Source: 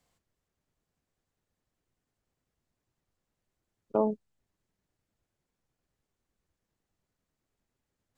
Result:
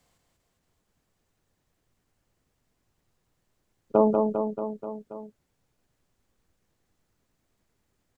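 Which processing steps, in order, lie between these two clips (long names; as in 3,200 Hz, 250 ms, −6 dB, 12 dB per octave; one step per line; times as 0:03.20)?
reverse bouncing-ball delay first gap 190 ms, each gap 1.1×, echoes 5
level +6.5 dB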